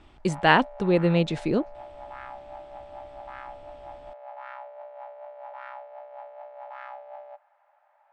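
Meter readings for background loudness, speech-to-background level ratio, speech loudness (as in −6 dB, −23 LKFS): −42.5 LKFS, 19.5 dB, −23.0 LKFS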